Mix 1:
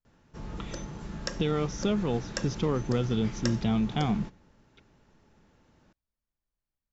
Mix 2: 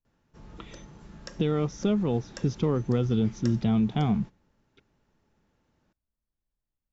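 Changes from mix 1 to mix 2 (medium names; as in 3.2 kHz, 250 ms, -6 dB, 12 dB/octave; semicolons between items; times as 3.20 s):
speech: add tilt shelf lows +3.5 dB, about 740 Hz; background -8.5 dB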